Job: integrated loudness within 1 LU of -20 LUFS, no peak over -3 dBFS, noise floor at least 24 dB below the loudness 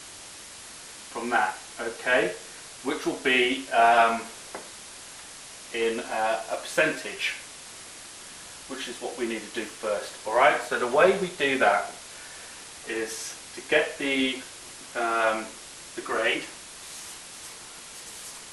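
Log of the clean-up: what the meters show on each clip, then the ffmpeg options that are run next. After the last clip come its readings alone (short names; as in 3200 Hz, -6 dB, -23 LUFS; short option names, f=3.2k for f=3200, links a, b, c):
noise floor -44 dBFS; noise floor target -50 dBFS; loudness -26.0 LUFS; peak -5.5 dBFS; loudness target -20.0 LUFS
-> -af "afftdn=nr=6:nf=-44"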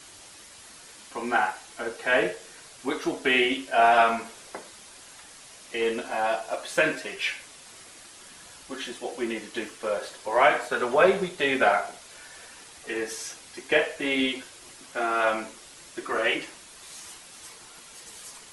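noise floor -48 dBFS; noise floor target -50 dBFS
-> -af "afftdn=nr=6:nf=-48"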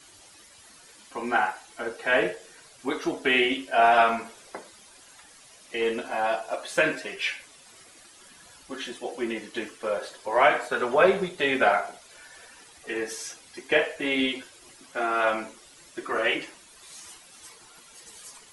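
noise floor -52 dBFS; loudness -26.0 LUFS; peak -5.5 dBFS; loudness target -20.0 LUFS
-> -af "volume=6dB,alimiter=limit=-3dB:level=0:latency=1"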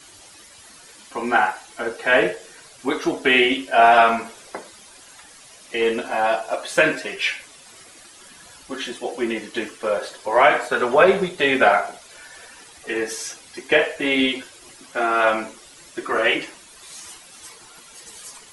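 loudness -20.0 LUFS; peak -3.0 dBFS; noise floor -46 dBFS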